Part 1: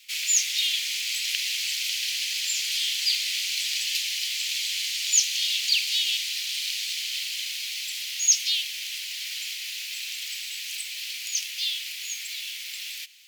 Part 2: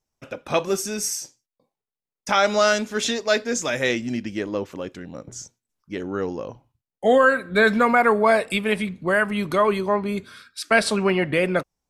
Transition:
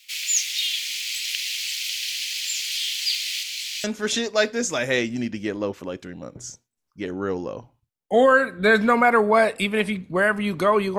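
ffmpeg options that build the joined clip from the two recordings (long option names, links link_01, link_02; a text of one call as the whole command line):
ffmpeg -i cue0.wav -i cue1.wav -filter_complex "[0:a]asettb=1/sr,asplit=3[link_01][link_02][link_03];[link_01]atrim=end=3.434[link_04];[link_02]atrim=start=3.43:end=3.84,asetpts=PTS-STARTPTS,afade=type=in:duration=0.004:curve=qsin,afade=type=out:start_time=0.406:duration=0.004:curve=qsin,flanger=delay=18:depth=5.6:speed=0.46[link_05];[link_03]atrim=start=3.836[link_06];[link_04][link_05]acrossfade=duration=0.004:curve1=hsin:curve2=qsin[link_07];[link_07][link_06]acrossfade=duration=0.004:curve1=qsin:curve2=hsin,apad=whole_dur=10.98,atrim=end=10.98,atrim=end=3.842[link_08];[1:a]atrim=start=2.758:end=9.9[link_09];[link_08][link_09]acrossfade=duration=0.004:curve1=hsin:curve2=hsin" out.wav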